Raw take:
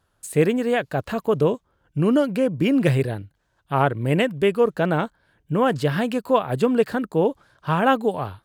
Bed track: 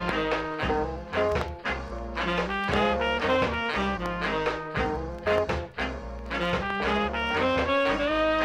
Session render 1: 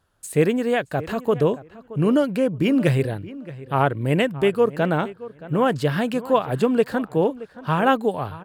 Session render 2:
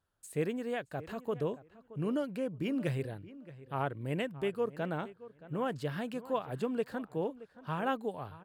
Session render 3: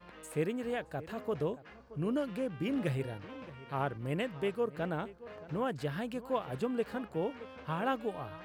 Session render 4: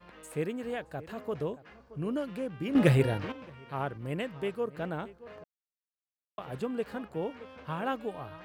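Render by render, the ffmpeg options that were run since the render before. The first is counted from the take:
-filter_complex "[0:a]asplit=2[a][b];[b]adelay=623,lowpass=f=2.9k:p=1,volume=-17dB,asplit=2[c][d];[d]adelay=623,lowpass=f=2.9k:p=1,volume=0.19[e];[a][c][e]amix=inputs=3:normalize=0"
-af "volume=-14.5dB"
-filter_complex "[1:a]volume=-25.5dB[a];[0:a][a]amix=inputs=2:normalize=0"
-filter_complex "[0:a]asplit=5[a][b][c][d][e];[a]atrim=end=2.752[f];[b]atrim=start=2.748:end=3.322,asetpts=PTS-STARTPTS,volume=11dB[g];[c]atrim=start=3.318:end=5.44,asetpts=PTS-STARTPTS,afade=t=out:st=2.118:d=0.004:c=hsin[h];[d]atrim=start=5.44:end=6.38,asetpts=PTS-STARTPTS,volume=0[i];[e]atrim=start=6.38,asetpts=PTS-STARTPTS,afade=t=in:d=0.004:c=hsin[j];[f][g]acrossfade=d=0.004:c1=hsin:c2=hsin[k];[h][i][j]concat=n=3:v=0:a=1[l];[k][l]acrossfade=d=0.004:c1=hsin:c2=hsin"

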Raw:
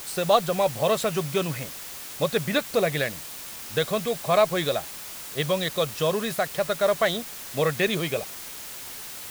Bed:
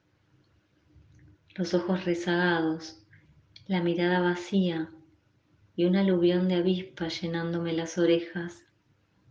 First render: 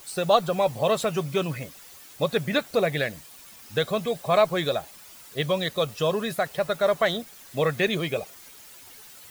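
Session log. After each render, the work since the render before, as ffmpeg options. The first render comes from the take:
-af "afftdn=nr=11:nf=-39"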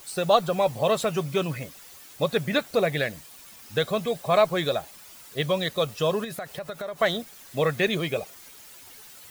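-filter_complex "[0:a]asettb=1/sr,asplit=3[a][b][c];[a]atrim=end=6.244[d];[b]atrim=start=6.24:end=6.99,asetpts=PTS-STARTPTS,afade=t=in:d=0.004:c=qsin,afade=t=out:st=0.746:d=0.004:c=qsin,acompressor=threshold=-31dB:ratio=5:attack=3.2:release=140:knee=1:detection=peak[e];[c]atrim=start=6.986[f];[d][e]acrossfade=d=0.004:c1=hsin:c2=qsin[g];[g][f]acrossfade=d=0.004:c1=qsin:c2=hsin"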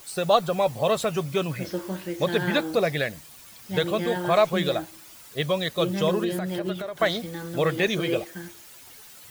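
-filter_complex "[1:a]volume=-4.5dB[a];[0:a][a]amix=inputs=2:normalize=0"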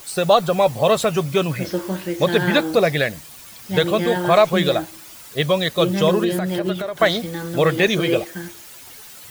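-af "volume=6.5dB,alimiter=limit=-3dB:level=0:latency=1"

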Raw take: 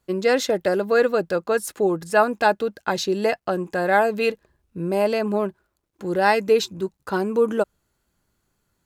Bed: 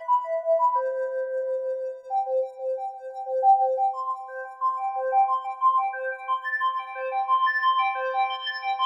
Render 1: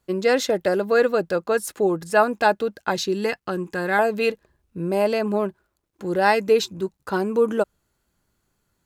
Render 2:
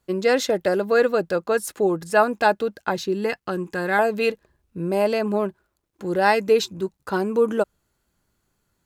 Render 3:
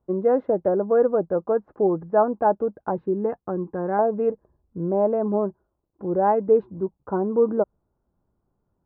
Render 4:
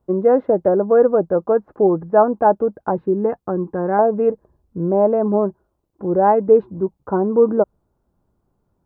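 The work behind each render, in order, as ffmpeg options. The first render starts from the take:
-filter_complex "[0:a]asettb=1/sr,asplit=3[a][b][c];[a]atrim=end=2.954[d];[b]atrim=start=2.95:end=3.99,asetpts=PTS-STARTPTS,afade=t=in:d=0.004:c=qsin,afade=t=out:st=1.036:d=0.004:c=qsin,equalizer=f=650:t=o:w=0.45:g=-12.5[e];[c]atrim=start=3.986[f];[d][e]acrossfade=d=0.004:c1=hsin:c2=qsin[g];[g][f]acrossfade=d=0.004:c1=qsin:c2=hsin"
-filter_complex "[0:a]asettb=1/sr,asplit=3[a][b][c];[a]atrim=end=2.894[d];[b]atrim=start=2.89:end=3.3,asetpts=PTS-STARTPTS,afade=t=in:d=0.004:c=qsin,afade=t=out:st=0.406:d=0.004:c=qsin,equalizer=f=5.8k:t=o:w=2.6:g=-6.5[e];[c]atrim=start=3.296[f];[d][e]acrossfade=d=0.004:c1=hsin:c2=qsin[g];[g][f]acrossfade=d=0.004:c1=qsin:c2=hsin"
-af "lowpass=f=1k:w=0.5412,lowpass=f=1k:w=1.3066"
-af "volume=5.5dB"

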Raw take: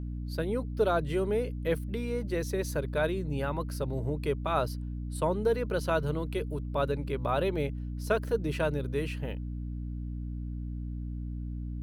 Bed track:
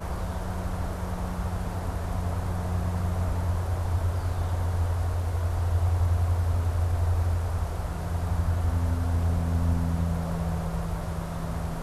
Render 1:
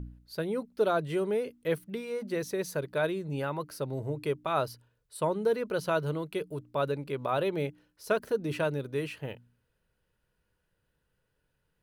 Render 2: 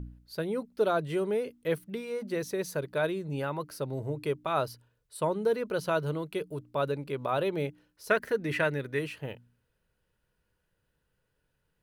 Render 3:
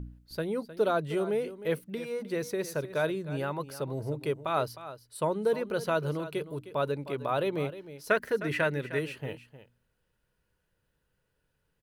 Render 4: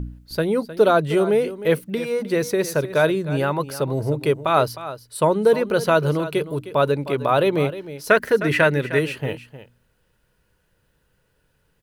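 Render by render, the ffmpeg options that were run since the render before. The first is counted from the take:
-af "bandreject=f=60:t=h:w=4,bandreject=f=120:t=h:w=4,bandreject=f=180:t=h:w=4,bandreject=f=240:t=h:w=4,bandreject=f=300:t=h:w=4"
-filter_complex "[0:a]asettb=1/sr,asplit=3[a][b][c];[a]atrim=end=8.104[d];[b]atrim=start=8.1:end=8.99,asetpts=PTS-STARTPTS,afade=t=in:d=0.004:c=qsin,afade=t=out:st=0.886:d=0.004:c=qsin,equalizer=f=1.9k:t=o:w=0.59:g=14.5[e];[c]atrim=start=8.986[f];[d][e]acrossfade=d=0.004:c1=hsin:c2=qsin[g];[g][f]acrossfade=d=0.004:c1=qsin:c2=hsin"
-af "aecho=1:1:309:0.2"
-af "volume=11dB,alimiter=limit=-3dB:level=0:latency=1"

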